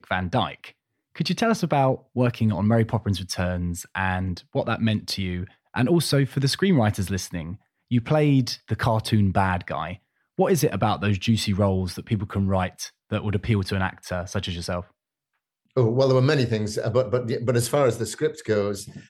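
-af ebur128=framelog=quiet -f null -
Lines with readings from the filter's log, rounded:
Integrated loudness:
  I:         -24.0 LUFS
  Threshold: -34.2 LUFS
Loudness range:
  LRA:         3.4 LU
  Threshold: -44.3 LUFS
  LRA low:   -26.4 LUFS
  LRA high:  -23.0 LUFS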